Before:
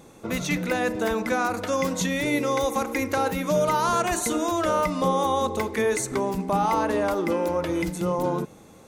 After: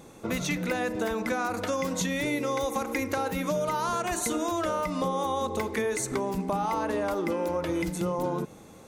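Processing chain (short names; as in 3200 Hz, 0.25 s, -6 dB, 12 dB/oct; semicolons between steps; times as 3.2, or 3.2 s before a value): compressor, threshold -25 dBFS, peak gain reduction 7 dB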